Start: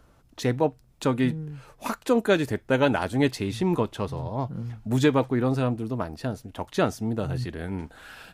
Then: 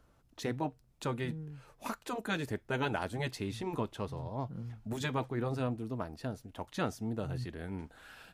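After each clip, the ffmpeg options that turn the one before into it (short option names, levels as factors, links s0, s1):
-af "afftfilt=real='re*lt(hypot(re,im),0.631)':imag='im*lt(hypot(re,im),0.631)':win_size=1024:overlap=0.75,volume=0.376"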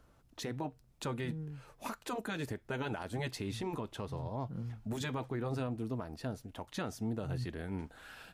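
-af "alimiter=level_in=1.88:limit=0.0631:level=0:latency=1:release=115,volume=0.531,volume=1.19"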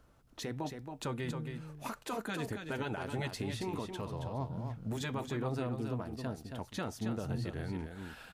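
-af "aecho=1:1:273:0.473"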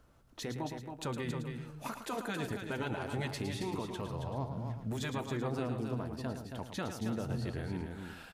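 -af "aecho=1:1:111:0.376"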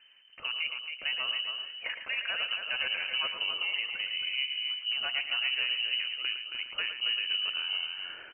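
-af "lowpass=f=2600:t=q:w=0.5098,lowpass=f=2600:t=q:w=0.6013,lowpass=f=2600:t=q:w=0.9,lowpass=f=2600:t=q:w=2.563,afreqshift=-3100,volume=1.68"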